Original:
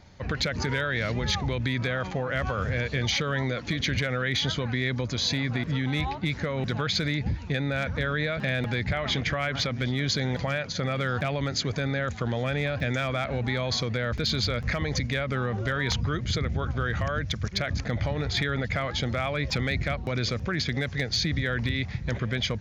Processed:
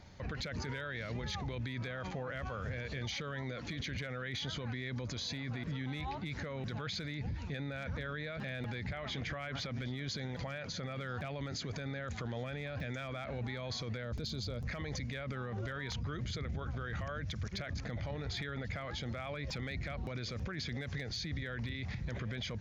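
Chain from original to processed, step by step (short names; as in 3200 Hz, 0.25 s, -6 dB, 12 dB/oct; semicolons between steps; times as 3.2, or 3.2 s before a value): 14.03–14.65 bell 1900 Hz -8.5 dB -> -14.5 dB 1.6 oct; limiter -28.5 dBFS, peak gain reduction 11 dB; gain -3 dB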